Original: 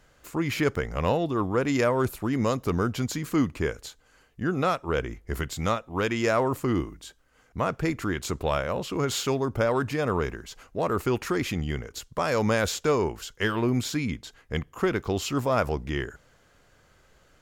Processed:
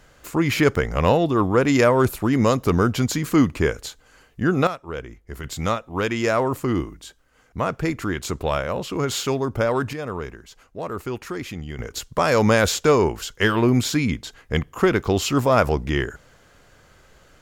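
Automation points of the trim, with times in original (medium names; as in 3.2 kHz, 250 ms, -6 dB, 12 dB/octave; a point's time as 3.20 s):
+7 dB
from 4.67 s -4.5 dB
from 5.44 s +3 dB
from 9.93 s -3.5 dB
from 11.79 s +7 dB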